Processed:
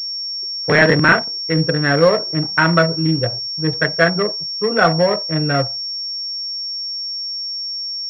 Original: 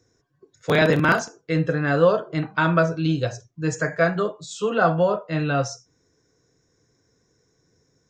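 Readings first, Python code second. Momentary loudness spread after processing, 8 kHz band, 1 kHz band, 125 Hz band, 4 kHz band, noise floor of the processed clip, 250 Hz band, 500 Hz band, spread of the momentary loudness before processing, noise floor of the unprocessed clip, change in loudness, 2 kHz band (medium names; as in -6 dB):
9 LU, no reading, +4.5 dB, +4.5 dB, +18.0 dB, -26 dBFS, +4.5 dB, +4.0 dB, 10 LU, -68 dBFS, +5.0 dB, +7.5 dB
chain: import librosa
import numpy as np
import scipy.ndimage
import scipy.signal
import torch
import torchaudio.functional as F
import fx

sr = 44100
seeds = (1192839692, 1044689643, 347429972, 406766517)

y = fx.wiener(x, sr, points=25)
y = fx.peak_eq(y, sr, hz=1900.0, db=12.5, octaves=0.55)
y = fx.leveller(y, sr, passes=1)
y = fx.pwm(y, sr, carrier_hz=5500.0)
y = F.gain(torch.from_numpy(y), 1.0).numpy()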